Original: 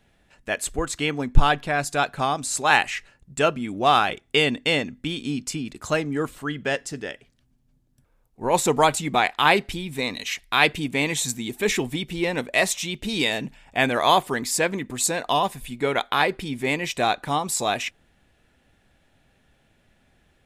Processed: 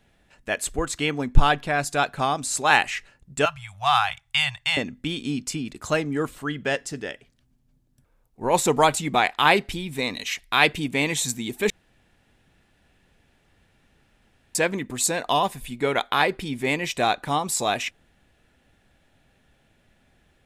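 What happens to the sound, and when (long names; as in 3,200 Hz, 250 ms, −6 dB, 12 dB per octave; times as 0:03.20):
0:03.45–0:04.77: elliptic band-stop filter 130–800 Hz, stop band 50 dB
0:11.70–0:14.55: fill with room tone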